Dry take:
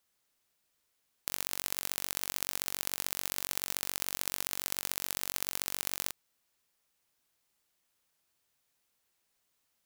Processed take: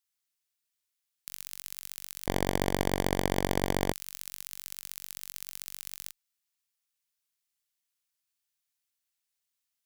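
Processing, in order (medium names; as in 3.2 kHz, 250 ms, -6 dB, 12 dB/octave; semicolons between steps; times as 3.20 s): amplifier tone stack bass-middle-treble 5-5-5; 2.26–3.93 s: sliding maximum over 33 samples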